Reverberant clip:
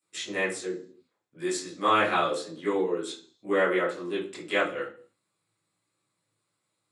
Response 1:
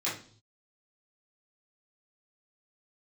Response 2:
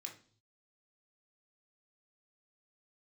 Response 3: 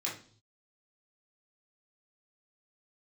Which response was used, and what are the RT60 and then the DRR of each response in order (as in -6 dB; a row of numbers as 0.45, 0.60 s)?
1; not exponential, not exponential, not exponential; -10.5, 0.5, -6.0 dB